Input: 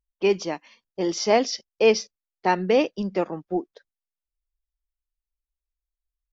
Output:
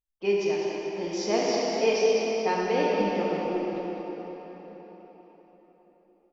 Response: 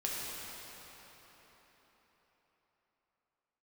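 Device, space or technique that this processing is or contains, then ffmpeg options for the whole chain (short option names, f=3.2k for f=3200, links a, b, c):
cave: -filter_complex "[0:a]aecho=1:1:204:0.376[a];[1:a]atrim=start_sample=2205[b];[a][b]afir=irnorm=-1:irlink=0,volume=-8dB"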